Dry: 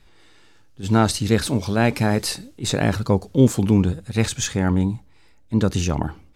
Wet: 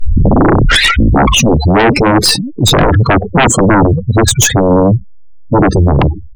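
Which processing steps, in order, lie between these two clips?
tape start at the beginning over 1.92 s; spectral gate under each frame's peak -10 dB strong; sine folder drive 18 dB, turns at -4 dBFS

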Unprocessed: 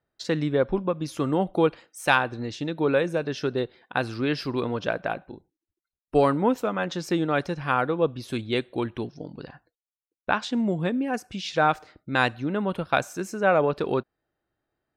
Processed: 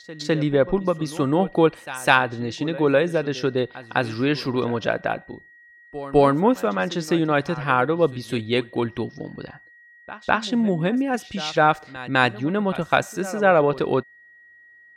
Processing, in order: pre-echo 0.205 s -17 dB; whine 1900 Hz -52 dBFS; gain +4 dB

